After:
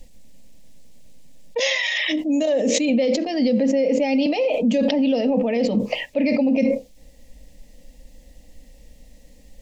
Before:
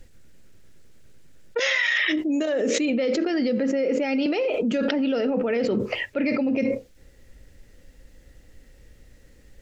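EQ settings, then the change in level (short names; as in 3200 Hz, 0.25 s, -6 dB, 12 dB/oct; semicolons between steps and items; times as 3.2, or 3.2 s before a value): fixed phaser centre 380 Hz, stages 6; +6.0 dB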